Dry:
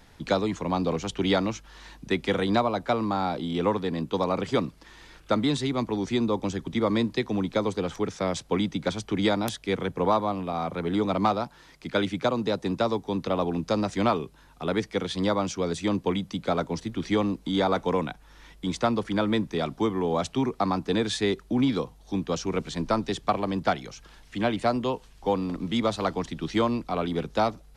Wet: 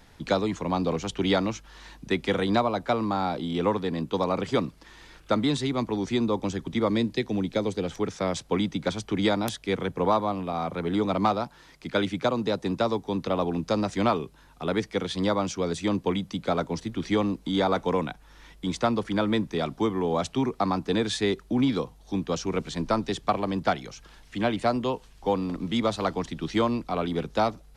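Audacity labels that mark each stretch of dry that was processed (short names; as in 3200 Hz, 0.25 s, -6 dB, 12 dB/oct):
6.890000	7.990000	bell 1100 Hz -8 dB 0.74 oct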